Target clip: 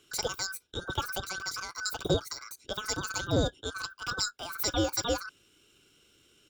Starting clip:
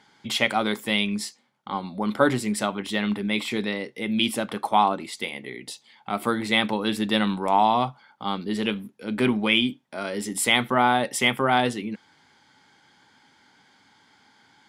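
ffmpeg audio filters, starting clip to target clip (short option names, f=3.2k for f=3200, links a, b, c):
-filter_complex "[0:a]afftfilt=real='real(if(between(b,1,1008),(2*floor((b-1)/48)+1)*48-b,b),0)':imag='imag(if(between(b,1,1008),(2*floor((b-1)/48)+1)*48-b,b),0)*if(between(b,1,1008),-1,1)':win_size=2048:overlap=0.75,equalizer=f=125:t=o:w=1:g=-8,equalizer=f=250:t=o:w=1:g=-3,equalizer=f=500:t=o:w=1:g=-11,equalizer=f=1k:t=o:w=1:g=-10,equalizer=f=4k:t=o:w=1:g=-8,equalizer=f=8k:t=o:w=1:g=-7,acrossover=split=200|740|2400[a][b][c][d];[c]acompressor=threshold=-45dB:ratio=20[e];[a][b][e][d]amix=inputs=4:normalize=0,asetrate=36028,aresample=44100,atempo=1.22405,asoftclip=type=tanh:threshold=-17dB,asetrate=99666,aresample=44100,volume=2.5dB"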